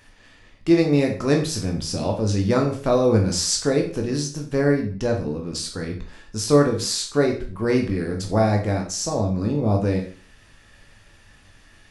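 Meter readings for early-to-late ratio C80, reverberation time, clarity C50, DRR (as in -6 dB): 13.0 dB, 0.40 s, 8.0 dB, 1.5 dB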